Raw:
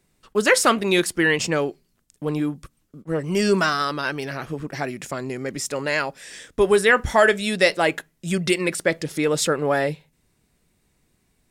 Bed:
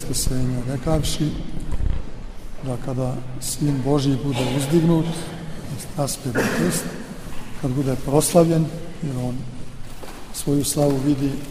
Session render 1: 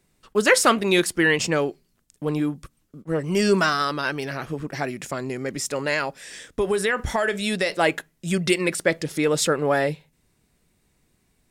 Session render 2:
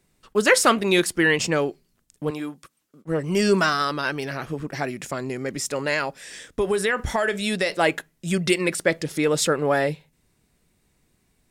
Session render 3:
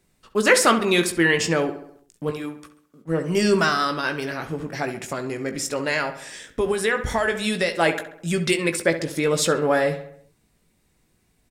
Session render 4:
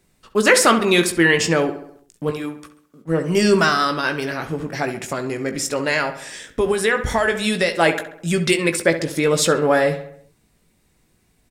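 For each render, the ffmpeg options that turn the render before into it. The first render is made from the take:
ffmpeg -i in.wav -filter_complex "[0:a]asettb=1/sr,asplit=3[link_01][link_02][link_03];[link_01]atrim=end=5.934[link_04];[link_02]atrim=start=5.93:end=7.78,asetpts=PTS-STARTPTS,afade=type=in:duration=0.004:curve=qsin,afade=type=out:start_time=1.846:duration=0.004:curve=qsin,acompressor=threshold=-18dB:ratio=6:attack=3.2:release=140:knee=1:detection=peak[link_05];[link_03]atrim=start=7.776[link_06];[link_04][link_05]acrossfade=duration=0.004:curve1=hsin:curve2=qsin[link_07];[link_07][link_06]acrossfade=duration=0.004:curve1=qsin:curve2=hsin" out.wav
ffmpeg -i in.wav -filter_complex "[0:a]asettb=1/sr,asplit=3[link_01][link_02][link_03];[link_01]atrim=end=2.304[link_04];[link_02]atrim=start=2.3:end=3.05,asetpts=PTS-STARTPTS,afade=type=in:duration=0.004:curve=qsin,afade=type=out:start_time=0.746:duration=0.004:curve=qsin,highpass=frequency=620:poles=1[link_05];[link_03]atrim=start=3.046[link_06];[link_04][link_05]acrossfade=duration=0.004:curve1=hsin:curve2=qsin[link_07];[link_07][link_06]acrossfade=duration=0.004:curve1=qsin:curve2=hsin" out.wav
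ffmpeg -i in.wav -filter_complex "[0:a]asplit=2[link_01][link_02];[link_02]adelay=18,volume=-9dB[link_03];[link_01][link_03]amix=inputs=2:normalize=0,asplit=2[link_04][link_05];[link_05]adelay=67,lowpass=frequency=3000:poles=1,volume=-11dB,asplit=2[link_06][link_07];[link_07]adelay=67,lowpass=frequency=3000:poles=1,volume=0.54,asplit=2[link_08][link_09];[link_09]adelay=67,lowpass=frequency=3000:poles=1,volume=0.54,asplit=2[link_10][link_11];[link_11]adelay=67,lowpass=frequency=3000:poles=1,volume=0.54,asplit=2[link_12][link_13];[link_13]adelay=67,lowpass=frequency=3000:poles=1,volume=0.54,asplit=2[link_14][link_15];[link_15]adelay=67,lowpass=frequency=3000:poles=1,volume=0.54[link_16];[link_06][link_08][link_10][link_12][link_14][link_16]amix=inputs=6:normalize=0[link_17];[link_04][link_17]amix=inputs=2:normalize=0" out.wav
ffmpeg -i in.wav -af "volume=3.5dB,alimiter=limit=-3dB:level=0:latency=1" out.wav

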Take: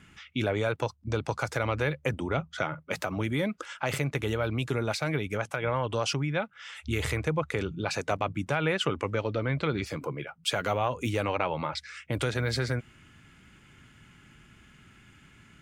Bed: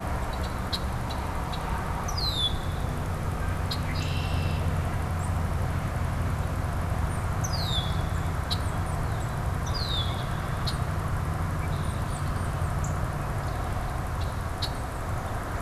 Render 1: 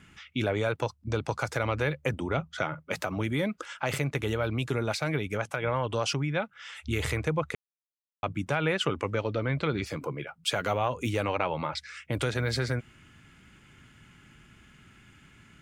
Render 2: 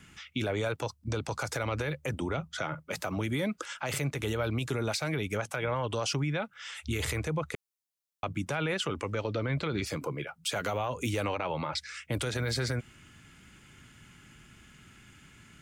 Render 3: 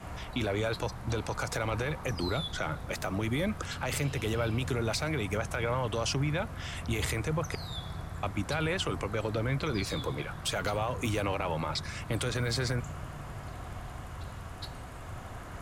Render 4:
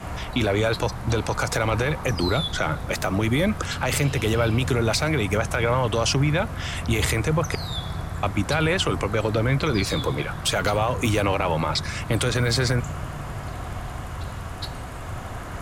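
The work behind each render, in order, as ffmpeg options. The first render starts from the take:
ffmpeg -i in.wav -filter_complex "[0:a]asplit=3[link_01][link_02][link_03];[link_01]atrim=end=7.55,asetpts=PTS-STARTPTS,afade=type=out:start_time=7.546:duration=0.004:curve=hsin[link_04];[link_02]atrim=start=7.55:end=8.23,asetpts=PTS-STARTPTS,volume=0[link_05];[link_03]atrim=start=8.23,asetpts=PTS-STARTPTS,afade=type=in:duration=0.004:curve=hsin[link_06];[link_04][link_05][link_06]concat=n=3:v=0:a=1" out.wav
ffmpeg -i in.wav -filter_complex "[0:a]acrossover=split=400|1200|4200[link_01][link_02][link_03][link_04];[link_04]acontrast=51[link_05];[link_01][link_02][link_03][link_05]amix=inputs=4:normalize=0,alimiter=limit=-22dB:level=0:latency=1:release=51" out.wav
ffmpeg -i in.wav -i bed.wav -filter_complex "[1:a]volume=-11.5dB[link_01];[0:a][link_01]amix=inputs=2:normalize=0" out.wav
ffmpeg -i in.wav -af "volume=9dB" out.wav

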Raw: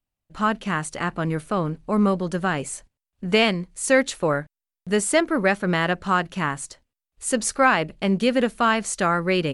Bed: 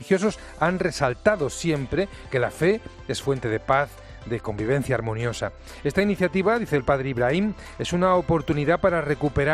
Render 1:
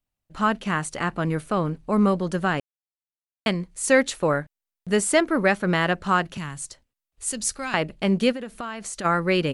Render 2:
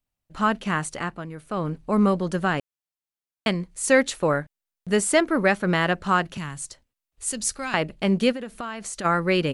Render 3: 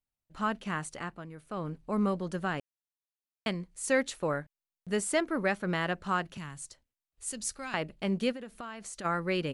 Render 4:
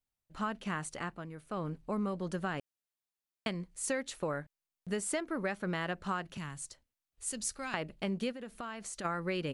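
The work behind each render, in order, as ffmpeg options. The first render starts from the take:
ffmpeg -i in.wav -filter_complex "[0:a]asettb=1/sr,asplit=3[link_01][link_02][link_03];[link_01]atrim=end=6.374[link_04];[link_02]atrim=start=6.37:end=7.74,asetpts=PTS-STARTPTS,afade=type=in:duration=0.004:curve=qsin,afade=type=out:start_time=1.366:duration=0.004:curve=qsin,acrossover=split=170|3000[link_05][link_06][link_07];[link_06]acompressor=threshold=-59dB:ratio=1.5:attack=3.2:release=140:knee=2.83:detection=peak[link_08];[link_05][link_08][link_07]amix=inputs=3:normalize=0[link_09];[link_03]atrim=start=7.736[link_10];[link_04][link_09]acrossfade=duration=0.004:curve1=hsin:curve2=qsin[link_11];[link_11][link_10]acrossfade=duration=0.004:curve1=qsin:curve2=hsin,asplit=3[link_12][link_13][link_14];[link_12]afade=type=out:start_time=8.31:duration=0.02[link_15];[link_13]acompressor=threshold=-30dB:ratio=5:attack=3.2:release=140:knee=1:detection=peak,afade=type=in:start_time=8.31:duration=0.02,afade=type=out:start_time=9.04:duration=0.02[link_16];[link_14]afade=type=in:start_time=9.04:duration=0.02[link_17];[link_15][link_16][link_17]amix=inputs=3:normalize=0,asplit=3[link_18][link_19][link_20];[link_18]atrim=end=2.6,asetpts=PTS-STARTPTS,afade=type=out:start_time=2.596:duration=0.004:curve=hsin[link_21];[link_19]atrim=start=2.6:end=3.46,asetpts=PTS-STARTPTS,volume=0[link_22];[link_20]atrim=start=3.46,asetpts=PTS-STARTPTS,afade=type=in:duration=0.004:curve=hsin[link_23];[link_21][link_22][link_23]concat=n=3:v=0:a=1" out.wav
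ffmpeg -i in.wav -filter_complex "[0:a]asplit=3[link_01][link_02][link_03];[link_01]atrim=end=1.27,asetpts=PTS-STARTPTS,afade=type=out:start_time=0.88:duration=0.39:silence=0.251189[link_04];[link_02]atrim=start=1.27:end=1.37,asetpts=PTS-STARTPTS,volume=-12dB[link_05];[link_03]atrim=start=1.37,asetpts=PTS-STARTPTS,afade=type=in:duration=0.39:silence=0.251189[link_06];[link_04][link_05][link_06]concat=n=3:v=0:a=1" out.wav
ffmpeg -i in.wav -af "volume=-9dB" out.wav
ffmpeg -i in.wav -af "acompressor=threshold=-31dB:ratio=5" out.wav

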